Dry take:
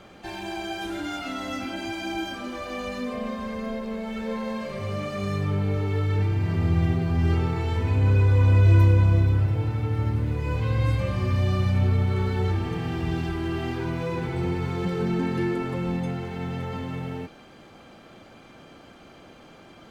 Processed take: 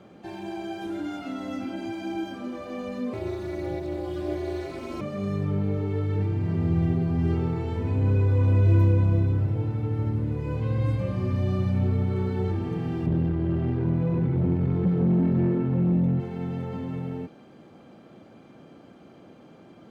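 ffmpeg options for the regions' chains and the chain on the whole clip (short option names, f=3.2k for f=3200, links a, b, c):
-filter_complex "[0:a]asettb=1/sr,asplit=3[a][b][c];[a]atrim=end=3.134[d];[b]atrim=start=3.13:end=5.01,asetpts=PTS-STARTPTS,afade=t=in:d=0.004:c=qsin,afade=t=out:st=1.876:d=0.004:c=qsin,highshelf=f=2.6k:g=10,aecho=1:1:4.3:0.87,atrim=end_sample=82908,aeval=exprs='val(0)*sin(2*PI*140*n/s)':c=same[e];[c]atrim=start=5.006[f];[d][e]acrossfade=d=0.004:c1=hsin:c2=qsin[g];[g][f]acrossfade=d=0.004:c1=qsin:c2=hsin,asettb=1/sr,asplit=3[h][i][j];[h]atrim=end=13.064[k];[i]atrim=start=13.06:end=16.2,asetpts=PTS-STARTPTS,afade=t=in:d=0.004:c=qsin,afade=t=out:st=3.136:d=0.004:c=qsin,bass=f=250:g=11,treble=f=4k:g=-11,aeval=exprs='(tanh(7.94*val(0)+0.35)-tanh(0.35))/7.94':c=same[l];[j]atrim=start=16.196[m];[k][l]acrossfade=d=0.004:c1=hsin:c2=qsin[n];[n][m]acrossfade=d=0.004:c1=qsin:c2=hsin,highpass=130,tiltshelf=f=720:g=7,volume=-3.5dB"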